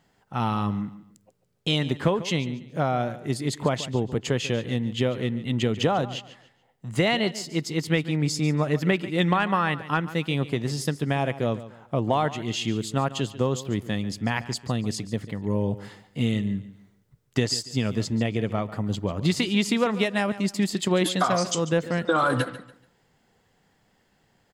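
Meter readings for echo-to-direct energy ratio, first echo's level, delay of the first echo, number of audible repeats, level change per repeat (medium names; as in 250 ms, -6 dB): -15.0 dB, -15.5 dB, 143 ms, 2, -10.5 dB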